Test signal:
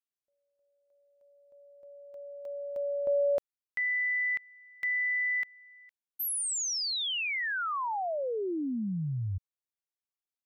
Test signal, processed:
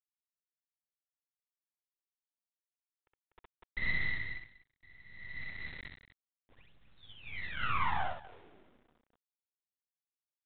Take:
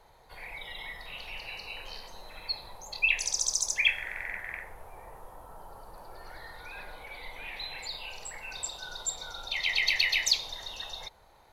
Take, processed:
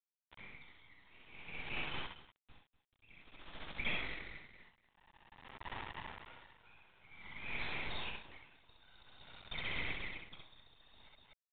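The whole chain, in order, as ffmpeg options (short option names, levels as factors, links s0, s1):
-af "highpass=840,afftdn=nr=17:nf=-46,aecho=1:1:0.9:0.97,areverse,acompressor=threshold=0.0158:ratio=10:attack=1.3:release=930:knee=1:detection=peak,areverse,afftfilt=real='hypot(re,im)*cos(2*PI*random(0))':imag='hypot(re,im)*sin(2*PI*random(1))':win_size=512:overlap=0.75,aresample=16000,acrusher=bits=6:dc=4:mix=0:aa=0.000001,aresample=44100,aecho=1:1:64.14|244.9:0.794|0.355,aresample=8000,aresample=44100,aeval=exprs='val(0)*pow(10,-26*(0.5-0.5*cos(2*PI*0.51*n/s))/20)':c=same,volume=5.01"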